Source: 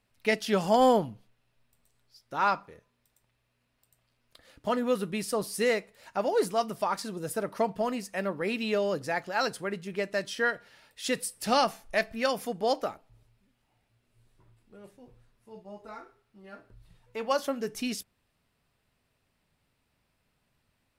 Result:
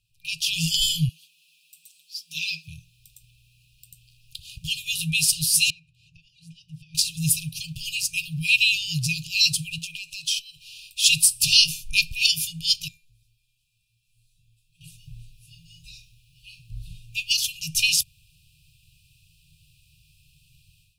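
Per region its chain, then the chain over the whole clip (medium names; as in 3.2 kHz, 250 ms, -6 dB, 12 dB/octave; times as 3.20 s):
1.09–2.68 s: comb 5.9 ms, depth 97% + compression, threshold -24 dBFS + brick-wall FIR high-pass 180 Hz
5.70–6.95 s: band-pass filter 270 Hz, Q 0.78 + compression 2:1, threshold -43 dBFS
9.78–11.01 s: compression 4:1, threshold -38 dBFS + peaking EQ 120 Hz -14.5 dB 2.9 oct
12.88–14.81 s: bass shelf 380 Hz -7.5 dB + band-stop 2.9 kHz, Q 14 + feedback comb 300 Hz, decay 0.36 s, mix 80%
whole clip: FFT band-reject 170–2400 Hz; level rider gain up to 15.5 dB; trim +3 dB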